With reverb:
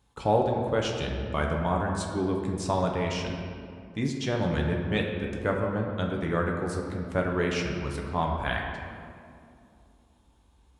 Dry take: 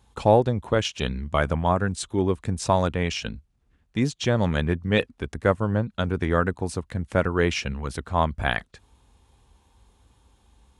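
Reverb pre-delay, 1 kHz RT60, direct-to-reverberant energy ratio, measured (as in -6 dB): 7 ms, 2.2 s, 0.0 dB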